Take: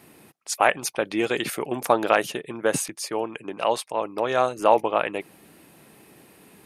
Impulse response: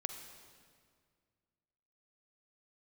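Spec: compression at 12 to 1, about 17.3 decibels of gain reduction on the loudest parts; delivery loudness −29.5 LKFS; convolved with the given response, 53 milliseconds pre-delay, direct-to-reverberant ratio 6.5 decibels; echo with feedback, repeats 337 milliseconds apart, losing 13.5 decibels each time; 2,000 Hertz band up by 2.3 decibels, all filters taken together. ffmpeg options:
-filter_complex "[0:a]equalizer=frequency=2000:width_type=o:gain=3,acompressor=threshold=-29dB:ratio=12,aecho=1:1:337|674:0.211|0.0444,asplit=2[link_01][link_02];[1:a]atrim=start_sample=2205,adelay=53[link_03];[link_02][link_03]afir=irnorm=-1:irlink=0,volume=-6.5dB[link_04];[link_01][link_04]amix=inputs=2:normalize=0,volume=4.5dB"

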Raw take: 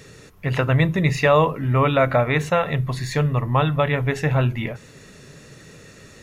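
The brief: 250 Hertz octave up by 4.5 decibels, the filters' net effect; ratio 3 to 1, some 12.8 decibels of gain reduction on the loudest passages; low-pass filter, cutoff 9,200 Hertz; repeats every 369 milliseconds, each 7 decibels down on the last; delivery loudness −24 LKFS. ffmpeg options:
ffmpeg -i in.wav -af "lowpass=9200,equalizer=frequency=250:width_type=o:gain=7,acompressor=threshold=-29dB:ratio=3,aecho=1:1:369|738|1107|1476|1845:0.447|0.201|0.0905|0.0407|0.0183,volume=5dB" out.wav

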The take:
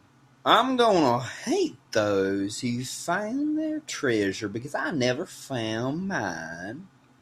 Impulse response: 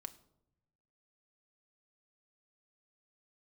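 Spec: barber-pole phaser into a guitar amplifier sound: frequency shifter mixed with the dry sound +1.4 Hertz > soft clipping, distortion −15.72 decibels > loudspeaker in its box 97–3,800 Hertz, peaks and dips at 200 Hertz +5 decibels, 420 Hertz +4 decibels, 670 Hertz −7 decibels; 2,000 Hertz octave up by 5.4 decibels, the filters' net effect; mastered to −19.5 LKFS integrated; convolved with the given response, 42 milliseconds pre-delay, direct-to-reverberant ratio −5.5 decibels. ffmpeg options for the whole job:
-filter_complex "[0:a]equalizer=frequency=2000:width_type=o:gain=7.5,asplit=2[link_01][link_02];[1:a]atrim=start_sample=2205,adelay=42[link_03];[link_02][link_03]afir=irnorm=-1:irlink=0,volume=10.5dB[link_04];[link_01][link_04]amix=inputs=2:normalize=0,asplit=2[link_05][link_06];[link_06]afreqshift=1.4[link_07];[link_05][link_07]amix=inputs=2:normalize=1,asoftclip=threshold=-8.5dB,highpass=97,equalizer=frequency=200:width_type=q:width=4:gain=5,equalizer=frequency=420:width_type=q:width=4:gain=4,equalizer=frequency=670:width_type=q:width=4:gain=-7,lowpass=frequency=3800:width=0.5412,lowpass=frequency=3800:width=1.3066,volume=1.5dB"

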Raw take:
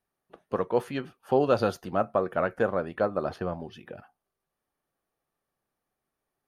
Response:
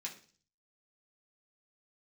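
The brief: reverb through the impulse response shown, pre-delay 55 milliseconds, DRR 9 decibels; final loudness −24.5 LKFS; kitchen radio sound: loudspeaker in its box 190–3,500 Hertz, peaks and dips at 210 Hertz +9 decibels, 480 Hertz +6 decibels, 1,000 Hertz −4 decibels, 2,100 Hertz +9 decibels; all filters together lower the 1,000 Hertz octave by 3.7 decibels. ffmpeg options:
-filter_complex "[0:a]equalizer=frequency=1000:width_type=o:gain=-5,asplit=2[link_01][link_02];[1:a]atrim=start_sample=2205,adelay=55[link_03];[link_02][link_03]afir=irnorm=-1:irlink=0,volume=-7.5dB[link_04];[link_01][link_04]amix=inputs=2:normalize=0,highpass=190,equalizer=frequency=210:width_type=q:width=4:gain=9,equalizer=frequency=480:width_type=q:width=4:gain=6,equalizer=frequency=1000:width_type=q:width=4:gain=-4,equalizer=frequency=2100:width_type=q:width=4:gain=9,lowpass=frequency=3500:width=0.5412,lowpass=frequency=3500:width=1.3066,volume=2dB"

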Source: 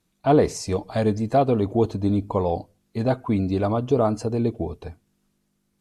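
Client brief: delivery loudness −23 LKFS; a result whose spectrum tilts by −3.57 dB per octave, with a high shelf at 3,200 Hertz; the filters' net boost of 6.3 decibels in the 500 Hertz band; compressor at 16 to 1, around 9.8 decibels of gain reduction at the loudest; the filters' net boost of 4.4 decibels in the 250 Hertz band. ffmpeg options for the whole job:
ffmpeg -i in.wav -af "equalizer=frequency=250:width_type=o:gain=3.5,equalizer=frequency=500:width_type=o:gain=6.5,highshelf=frequency=3200:gain=5.5,acompressor=threshold=-16dB:ratio=16" out.wav

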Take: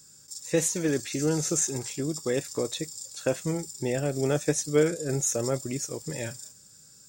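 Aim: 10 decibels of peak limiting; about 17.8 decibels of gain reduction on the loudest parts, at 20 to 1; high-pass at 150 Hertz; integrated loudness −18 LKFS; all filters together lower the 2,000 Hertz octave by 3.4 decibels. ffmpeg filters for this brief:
ffmpeg -i in.wav -af "highpass=150,equalizer=frequency=2000:width_type=o:gain=-4.5,acompressor=threshold=-35dB:ratio=20,volume=23.5dB,alimiter=limit=-8dB:level=0:latency=1" out.wav

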